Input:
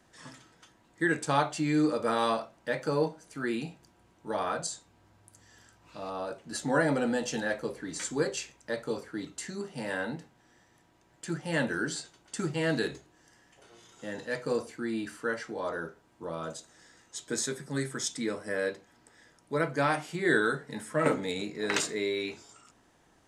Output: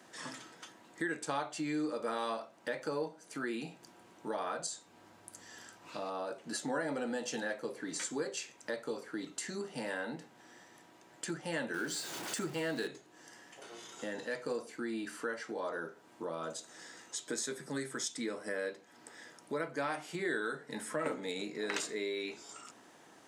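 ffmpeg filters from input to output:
ffmpeg -i in.wav -filter_complex "[0:a]asettb=1/sr,asplit=3[link_01][link_02][link_03];[link_01]atrim=end=11.744[link_04];[link_02]atrim=start=11.74:end=12.87,asetpts=PTS-STARTPTS,afade=type=in:duration=0.004:curve=qsin,afade=type=out:start_time=1.126:duration=0.004:curve=qsin,aeval=exprs='val(0)+0.5*0.0126*sgn(val(0))':channel_layout=same[link_05];[link_03]atrim=start=12.866[link_06];[link_04][link_05]acrossfade=duration=0.004:curve1=hsin:curve2=qsin[link_07];[link_07][link_06]acrossfade=duration=0.004:curve1=qsin:curve2=hsin,highpass=220,acompressor=threshold=-47dB:ratio=2.5,volume=6.5dB" out.wav

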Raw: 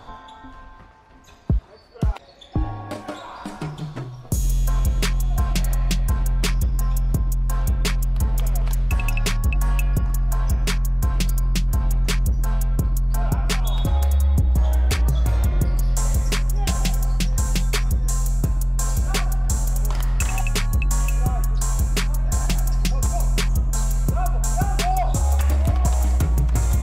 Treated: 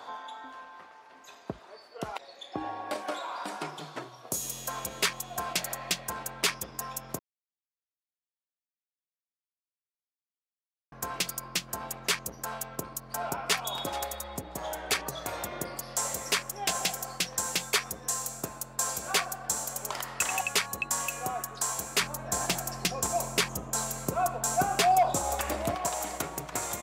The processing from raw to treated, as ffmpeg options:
ffmpeg -i in.wav -filter_complex "[0:a]asplit=2[link_01][link_02];[link_02]afade=type=in:start_time=13.01:duration=0.01,afade=type=out:start_time=13.63:duration=0.01,aecho=0:1:430|860:0.141254|0.0141254[link_03];[link_01][link_03]amix=inputs=2:normalize=0,asettb=1/sr,asplit=3[link_04][link_05][link_06];[link_04]atrim=end=22.004[link_07];[link_05]atrim=start=22:end=25.75,asetpts=PTS-STARTPTS,afade=type=in:duration=0.004:curve=qsin,afade=type=out:start_time=3.746:duration=0.004:curve=qsin,lowshelf=frequency=400:gain=8.5[link_08];[link_06]atrim=start=25.746[link_09];[link_07][link_08]acrossfade=duration=0.004:curve1=hsin:curve2=qsin[link_10];[link_10][link_09]acrossfade=duration=0.004:curve1=qsin:curve2=hsin,asplit=3[link_11][link_12][link_13];[link_11]atrim=end=7.19,asetpts=PTS-STARTPTS,afade=type=out:start_time=7.186:duration=0.004:curve=hsin[link_14];[link_12]atrim=start=7.19:end=10.92,asetpts=PTS-STARTPTS,volume=0[link_15];[link_13]atrim=start=10.92,asetpts=PTS-STARTPTS,afade=type=in:duration=0.004:curve=hsin[link_16];[link_14][link_15][link_16]concat=n=3:v=0:a=1,highpass=450" out.wav

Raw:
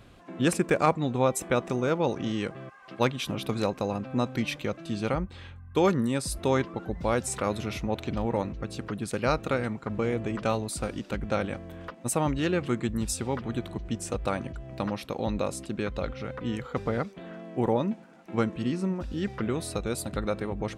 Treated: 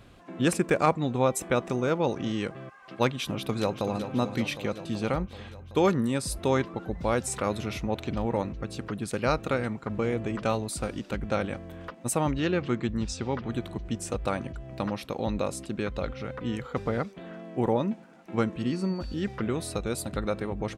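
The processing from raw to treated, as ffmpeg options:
ffmpeg -i in.wav -filter_complex "[0:a]asplit=2[link_01][link_02];[link_02]afade=type=in:start_time=3.23:duration=0.01,afade=type=out:start_time=3.96:duration=0.01,aecho=0:1:380|760|1140|1520|1900|2280|2660|3040|3420|3800:0.334965|0.234476|0.164133|0.114893|0.0804252|0.0562976|0.0394083|0.0275858|0.0193101|0.0135171[link_03];[link_01][link_03]amix=inputs=2:normalize=0,asettb=1/sr,asplit=3[link_04][link_05][link_06];[link_04]atrim=end=12.314[link_07];[link_05]atrim=start=12.31:end=13.49,asetpts=PTS-STARTPTS,afade=type=in:duration=0.004:curve=qsin,afade=type=out:start_time=1.176:duration=0.004:curve=qsin,lowpass=frequency=6300:width=0.5412,lowpass=frequency=6300:width=1.3066[link_08];[link_06]atrim=start=13.486[link_09];[link_07][link_08]acrossfade=duration=0.004:curve1=hsin:curve2=qsin[link_10];[link_10][link_09]acrossfade=duration=0.004:curve1=qsin:curve2=hsin,asettb=1/sr,asplit=3[link_11][link_12][link_13];[link_11]atrim=end=18.704[link_14];[link_12]atrim=start=18.7:end=19.14,asetpts=PTS-STARTPTS,afade=type=in:duration=0.004:curve=qsin,afade=type=out:start_time=0.436:duration=0.004:curve=qsin,aeval=exprs='val(0)+0.00316*sin(2*PI*4500*n/s)':channel_layout=same[link_15];[link_13]atrim=start=19.136[link_16];[link_14][link_15]acrossfade=duration=0.004:curve1=hsin:curve2=qsin[link_17];[link_17][link_16]acrossfade=duration=0.004:curve1=qsin:curve2=hsin" out.wav

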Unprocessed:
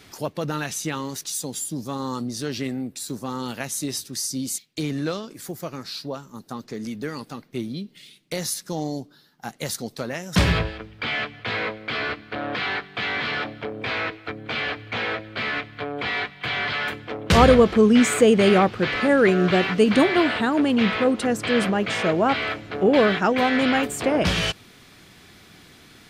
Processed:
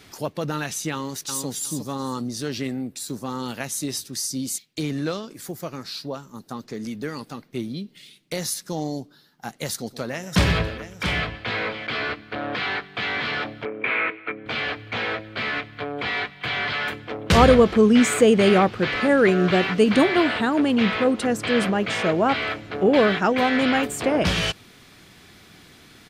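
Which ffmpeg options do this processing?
ffmpeg -i in.wav -filter_complex "[0:a]asplit=2[link_01][link_02];[link_02]afade=type=in:start_time=0.92:duration=0.01,afade=type=out:start_time=1.46:duration=0.01,aecho=0:1:360|720|1080:0.530884|0.106177|0.0212354[link_03];[link_01][link_03]amix=inputs=2:normalize=0,asettb=1/sr,asplit=3[link_04][link_05][link_06];[link_04]atrim=end=9.754[link_07];[link_05]atrim=start=9.75:end=11.87,asetpts=PTS-STARTPTS,afade=type=in:duration=0.004:curve=qsin,afade=type=out:start_time=2.116:duration=0.004:curve=qsin,aecho=1:1:122|677:0.15|0.335,atrim=end_sample=93492[link_08];[link_06]atrim=start=11.866[link_09];[link_07][link_08]acrossfade=duration=0.004:curve1=hsin:curve2=qsin[link_10];[link_10][link_09]acrossfade=duration=0.004:curve1=qsin:curve2=hsin,asettb=1/sr,asplit=3[link_11][link_12][link_13];[link_11]atrim=end=13.654[link_14];[link_12]atrim=start=13.65:end=14.46,asetpts=PTS-STARTPTS,afade=type=in:duration=0.004:curve=qsin,afade=type=out:start_time=0.806:duration=0.004:curve=qsin,highpass=210,equalizer=frequency=400:width_type=q:width=4:gain=3,equalizer=frequency=740:width_type=q:width=4:gain=-5,equalizer=frequency=1300:width_type=q:width=4:gain=3,equalizer=frequency=2300:width_type=q:width=4:gain=9,lowpass=frequency=2800:width=0.5412,lowpass=frequency=2800:width=1.3066[link_15];[link_13]atrim=start=14.456[link_16];[link_14][link_15]acrossfade=duration=0.004:curve1=hsin:curve2=qsin[link_17];[link_17][link_16]acrossfade=duration=0.004:curve1=qsin:curve2=hsin" out.wav

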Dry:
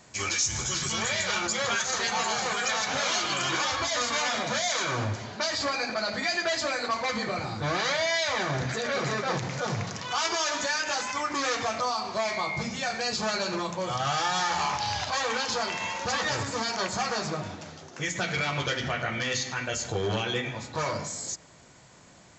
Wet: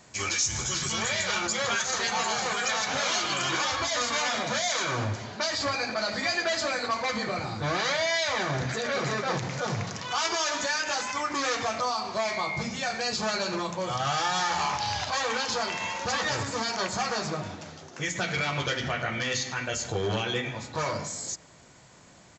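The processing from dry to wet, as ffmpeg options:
ffmpeg -i in.wav -filter_complex "[0:a]asplit=2[link_01][link_02];[link_02]afade=type=in:start_time=5.07:duration=0.01,afade=type=out:start_time=6.19:duration=0.01,aecho=0:1:590|1180|1770|2360:0.251189|0.100475|0.0401902|0.0160761[link_03];[link_01][link_03]amix=inputs=2:normalize=0" out.wav

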